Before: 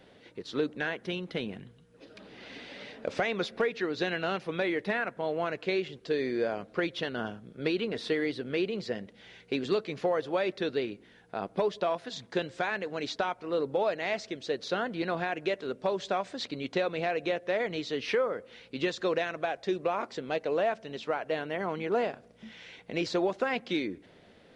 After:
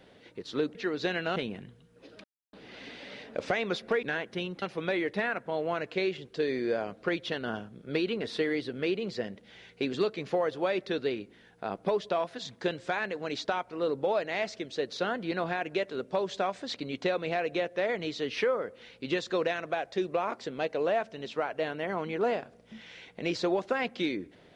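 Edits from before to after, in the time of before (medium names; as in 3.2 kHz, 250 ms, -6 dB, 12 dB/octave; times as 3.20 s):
0.75–1.34 s: swap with 3.72–4.33 s
2.22 s: insert silence 0.29 s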